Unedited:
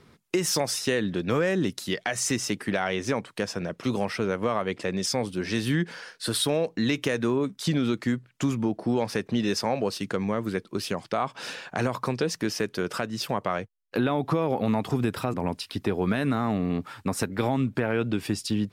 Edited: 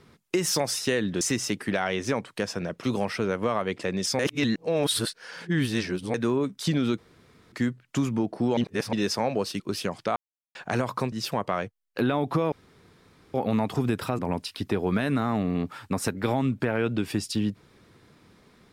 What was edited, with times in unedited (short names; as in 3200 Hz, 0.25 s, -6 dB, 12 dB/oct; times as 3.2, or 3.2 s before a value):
1.21–2.21 cut
5.19–7.14 reverse
7.98 insert room tone 0.54 s
9.03–9.39 reverse
10.06–10.66 cut
11.22–11.61 mute
12.18–13.09 cut
14.49 insert room tone 0.82 s